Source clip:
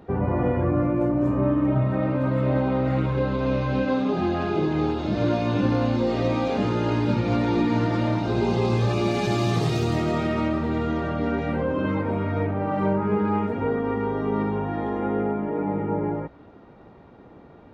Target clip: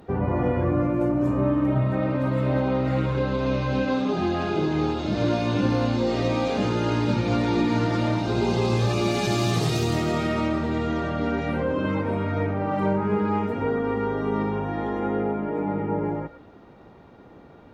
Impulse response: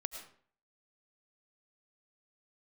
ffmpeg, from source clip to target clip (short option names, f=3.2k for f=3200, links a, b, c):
-filter_complex "[0:a]highshelf=f=4.3k:g=9[a];[1:a]atrim=start_sample=2205,afade=t=out:st=0.14:d=0.01,atrim=end_sample=6615,asetrate=33516,aresample=44100[b];[a][b]afir=irnorm=-1:irlink=0"